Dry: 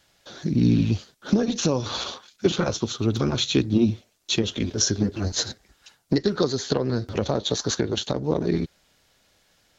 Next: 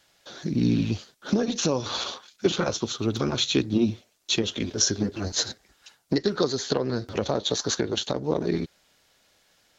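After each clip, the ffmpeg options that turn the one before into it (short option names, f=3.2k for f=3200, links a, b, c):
-af "lowshelf=f=190:g=-7.5"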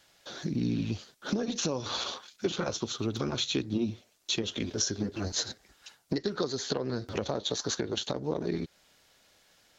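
-af "acompressor=threshold=-32dB:ratio=2"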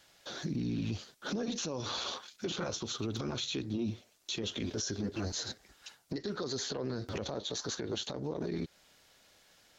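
-af "alimiter=level_in=3dB:limit=-24dB:level=0:latency=1:release=28,volume=-3dB"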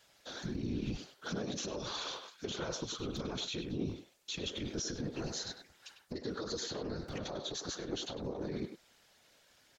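-filter_complex "[0:a]afftfilt=real='hypot(re,im)*cos(2*PI*random(0))':imag='hypot(re,im)*sin(2*PI*random(1))':win_size=512:overlap=0.75,asplit=2[a][b];[b]adelay=100,highpass=300,lowpass=3.4k,asoftclip=type=hard:threshold=-36.5dB,volume=-6dB[c];[a][c]amix=inputs=2:normalize=0,volume=3dB"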